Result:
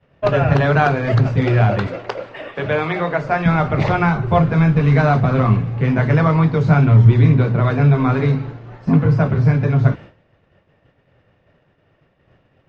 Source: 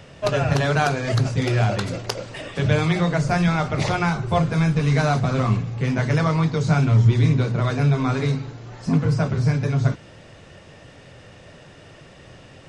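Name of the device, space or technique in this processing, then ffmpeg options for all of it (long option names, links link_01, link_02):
hearing-loss simulation: -filter_complex "[0:a]lowpass=2300,agate=range=-33dB:threshold=-33dB:ratio=3:detection=peak,asettb=1/sr,asplit=3[link_01][link_02][link_03];[link_01]atrim=end=1.874[link_04];[link_02]atrim=start=1.87:end=3.46,asetpts=PTS-STARTPTS,afade=type=in:duration=0.004:curve=qsin,afade=type=out:start_time=1.586:duration=0.004:curve=qsin,bass=frequency=250:gain=-14,treble=frequency=4000:gain=-4[link_05];[link_03]atrim=start=3.456[link_06];[link_04][link_05]acrossfade=duration=0.004:curve1=hsin:curve2=qsin[link_07];[link_07][link_06]acrossfade=duration=0.004:curve1=qsin:curve2=hsin,volume=5.5dB"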